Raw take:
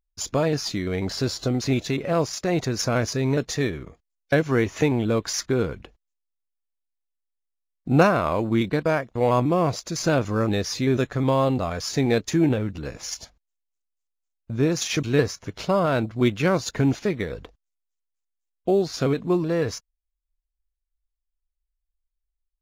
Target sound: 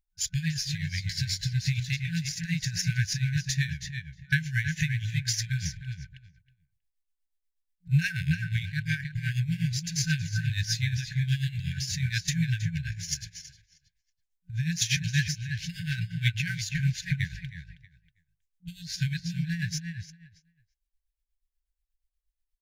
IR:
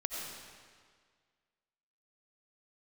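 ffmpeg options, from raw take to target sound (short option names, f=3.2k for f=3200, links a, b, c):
-filter_complex "[0:a]asplit=2[a][b];[b]adelay=319,lowpass=f=4.5k:p=1,volume=-5.5dB,asplit=2[c][d];[d]adelay=319,lowpass=f=4.5k:p=1,volume=0.16,asplit=2[e][f];[f]adelay=319,lowpass=f=4.5k:p=1,volume=0.16[g];[a][c][e][g]amix=inputs=4:normalize=0,tremolo=f=8.3:d=0.74,afftfilt=real='re*(1-between(b*sr/4096,180,1500))':imag='im*(1-between(b*sr/4096,180,1500))':win_size=4096:overlap=0.75,volume=2dB"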